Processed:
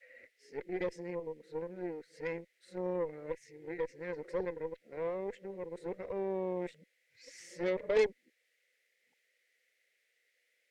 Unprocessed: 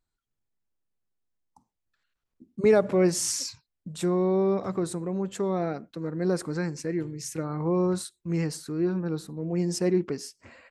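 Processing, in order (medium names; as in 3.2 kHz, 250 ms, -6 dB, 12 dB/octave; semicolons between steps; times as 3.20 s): reverse the whole clip; added noise blue -53 dBFS; two resonant band-passes 1 kHz, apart 2 oct; Chebyshev shaper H 6 -20 dB, 8 -17 dB, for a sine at -18.5 dBFS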